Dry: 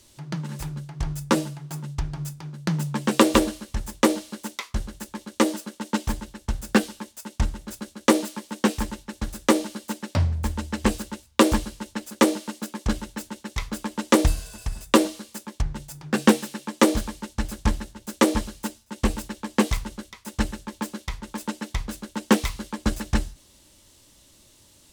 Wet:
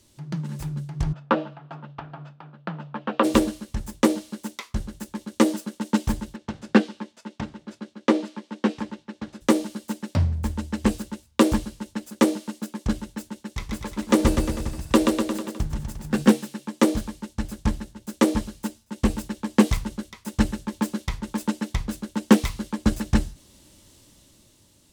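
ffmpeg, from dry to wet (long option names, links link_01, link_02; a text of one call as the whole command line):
ffmpeg -i in.wav -filter_complex "[0:a]asplit=3[link_01][link_02][link_03];[link_01]afade=type=out:start_time=1.12:duration=0.02[link_04];[link_02]highpass=360,equalizer=frequency=360:width_type=q:width=4:gain=-9,equalizer=frequency=700:width_type=q:width=4:gain=5,equalizer=frequency=1300:width_type=q:width=4:gain=5,equalizer=frequency=2100:width_type=q:width=4:gain=-7,lowpass=frequency=2900:width=0.5412,lowpass=frequency=2900:width=1.3066,afade=type=in:start_time=1.12:duration=0.02,afade=type=out:start_time=3.23:duration=0.02[link_05];[link_03]afade=type=in:start_time=3.23:duration=0.02[link_06];[link_04][link_05][link_06]amix=inputs=3:normalize=0,asplit=3[link_07][link_08][link_09];[link_07]afade=type=out:start_time=6.35:duration=0.02[link_10];[link_08]highpass=200,lowpass=4000,afade=type=in:start_time=6.35:duration=0.02,afade=type=out:start_time=9.4:duration=0.02[link_11];[link_09]afade=type=in:start_time=9.4:duration=0.02[link_12];[link_10][link_11][link_12]amix=inputs=3:normalize=0,asettb=1/sr,asplit=3[link_13][link_14][link_15];[link_13]atrim=end=13.474[link_16];[link_14]atrim=start=13.47:end=16.32,asetpts=PTS-STARTPTS,afade=type=in:duration=0.004:curve=qsin,afade=type=out:start_time=2.846:duration=0.004:curve=qsin,aecho=1:1:130|247|352.3|447.1|532.4|609.1:0.631|0.398|0.251|0.158|0.1|0.0631,atrim=end_sample=125685[link_17];[link_15]atrim=start=16.316[link_18];[link_16][link_17]acrossfade=duration=0.004:curve1=hsin:curve2=qsin[link_19];[link_19][link_18]acrossfade=duration=0.004:curve1=qsin:curve2=hsin,dynaudnorm=framelen=210:gausssize=9:maxgain=11.5dB,equalizer=frequency=170:width=0.51:gain=6.5,volume=-5.5dB" out.wav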